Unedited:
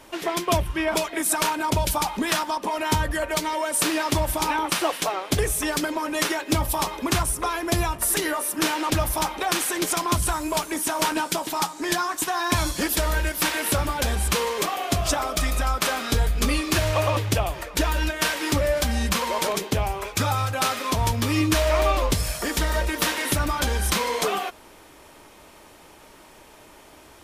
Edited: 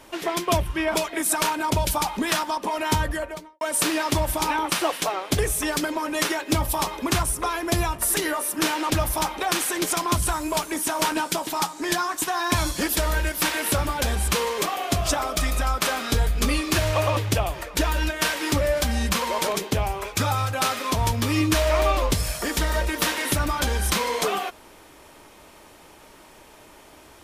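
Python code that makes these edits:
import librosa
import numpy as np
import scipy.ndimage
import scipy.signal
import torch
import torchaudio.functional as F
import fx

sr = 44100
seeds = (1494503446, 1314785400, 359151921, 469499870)

y = fx.studio_fade_out(x, sr, start_s=3.02, length_s=0.59)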